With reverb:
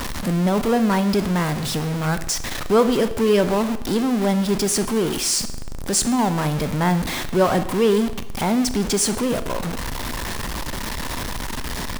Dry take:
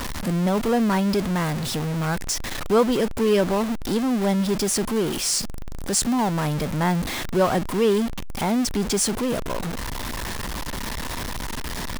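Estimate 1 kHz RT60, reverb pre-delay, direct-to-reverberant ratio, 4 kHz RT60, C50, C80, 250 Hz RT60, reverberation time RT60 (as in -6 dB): 0.90 s, 24 ms, 11.0 dB, 0.85 s, 13.0 dB, 15.0 dB, 0.90 s, 0.90 s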